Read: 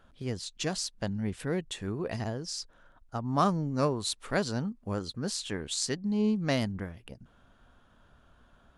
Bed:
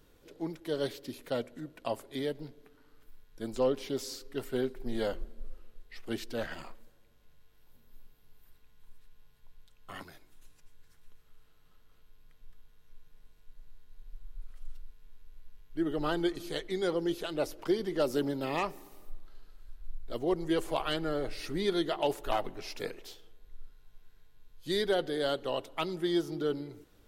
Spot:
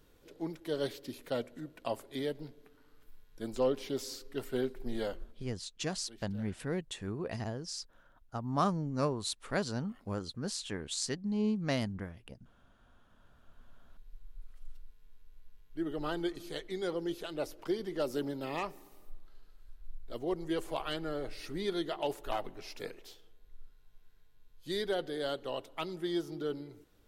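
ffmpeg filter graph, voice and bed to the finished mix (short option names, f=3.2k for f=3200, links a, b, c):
-filter_complex "[0:a]adelay=5200,volume=-4dB[a];[1:a]volume=13.5dB,afade=t=out:st=4.85:d=0.77:silence=0.125893,afade=t=in:st=12.95:d=0.96:silence=0.177828[b];[a][b]amix=inputs=2:normalize=0"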